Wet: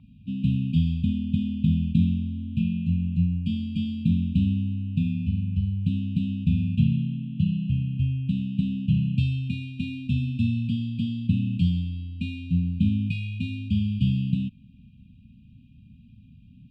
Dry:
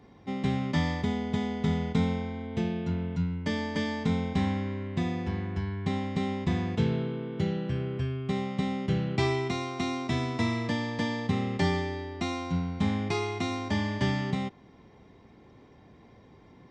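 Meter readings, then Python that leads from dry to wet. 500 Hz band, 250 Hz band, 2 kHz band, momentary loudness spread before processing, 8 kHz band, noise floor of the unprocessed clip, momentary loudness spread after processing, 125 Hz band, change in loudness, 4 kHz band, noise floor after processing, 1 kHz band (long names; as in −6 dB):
below −35 dB, +4.5 dB, −8.5 dB, 5 LU, can't be measured, −55 dBFS, 7 LU, +7.0 dB, +4.5 dB, −3.5 dB, −52 dBFS, below −40 dB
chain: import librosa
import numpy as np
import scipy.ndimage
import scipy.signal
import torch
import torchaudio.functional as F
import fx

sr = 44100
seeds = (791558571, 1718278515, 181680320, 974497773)

y = fx.brickwall_bandstop(x, sr, low_hz=270.0, high_hz=2400.0)
y = fx.high_shelf_res(y, sr, hz=2800.0, db=-11.5, q=1.5)
y = fx.fixed_phaser(y, sr, hz=1700.0, stages=6)
y = F.gain(torch.from_numpy(y), 8.0).numpy()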